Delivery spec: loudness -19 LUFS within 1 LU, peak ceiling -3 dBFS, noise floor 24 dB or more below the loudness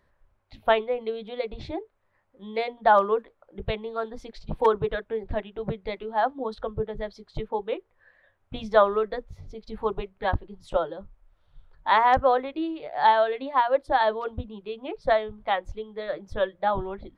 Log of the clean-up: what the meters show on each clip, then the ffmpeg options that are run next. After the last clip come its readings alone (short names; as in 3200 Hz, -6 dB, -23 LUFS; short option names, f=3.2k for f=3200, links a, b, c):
loudness -26.5 LUFS; peak -6.5 dBFS; loudness target -19.0 LUFS
-> -af "volume=7.5dB,alimiter=limit=-3dB:level=0:latency=1"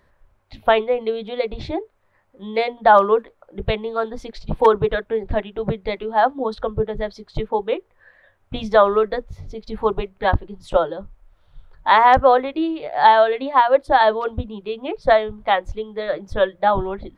loudness -19.5 LUFS; peak -3.0 dBFS; noise floor -61 dBFS